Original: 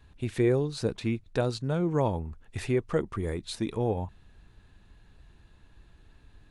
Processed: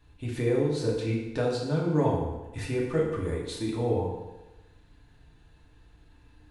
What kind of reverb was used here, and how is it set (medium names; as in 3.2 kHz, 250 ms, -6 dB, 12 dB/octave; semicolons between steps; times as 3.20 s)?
FDN reverb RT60 1.1 s, low-frequency decay 0.85×, high-frequency decay 0.8×, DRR -4 dB; trim -5 dB